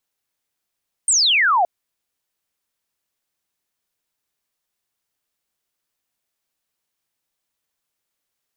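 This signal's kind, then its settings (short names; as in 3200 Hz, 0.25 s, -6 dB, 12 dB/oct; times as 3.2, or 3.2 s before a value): laser zap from 8900 Hz, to 660 Hz, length 0.57 s sine, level -13 dB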